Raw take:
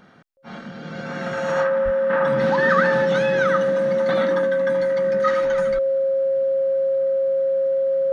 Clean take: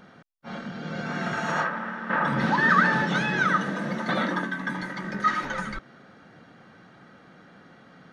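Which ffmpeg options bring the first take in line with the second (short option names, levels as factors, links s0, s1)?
-filter_complex "[0:a]bandreject=f=540:w=30,asplit=3[s0][s1][s2];[s0]afade=t=out:st=1.84:d=0.02[s3];[s1]highpass=f=140:w=0.5412,highpass=f=140:w=1.3066,afade=t=in:st=1.84:d=0.02,afade=t=out:st=1.96:d=0.02[s4];[s2]afade=t=in:st=1.96:d=0.02[s5];[s3][s4][s5]amix=inputs=3:normalize=0"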